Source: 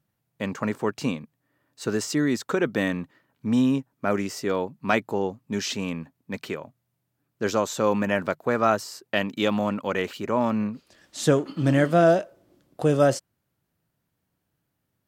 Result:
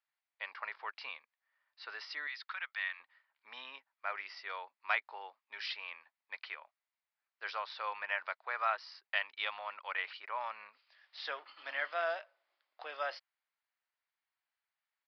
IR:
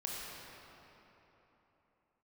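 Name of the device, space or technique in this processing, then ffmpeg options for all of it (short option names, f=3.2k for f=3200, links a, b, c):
musical greeting card: -filter_complex "[0:a]asettb=1/sr,asplit=3[a][b][c];[a]atrim=end=2.274[d];[b]atrim=start=2.27:end=3,asetpts=PTS-STARTPTS,afade=t=in:d=0.004:c=qsin,afade=t=out:st=0.726:d=0.004:c=qsin,highpass=1.3k[e];[c]atrim=start=2.996[f];[d][e]acrossfade=d=0.004:c1=hsin:c2=qsin[g];[g][f]acrossfade=d=0.004:c1=qsin:c2=hsin,aresample=11025,aresample=44100,highpass=f=840:w=0.5412,highpass=f=840:w=1.3066,equalizer=f=2.1k:t=o:w=0.5:g=6,volume=-9dB"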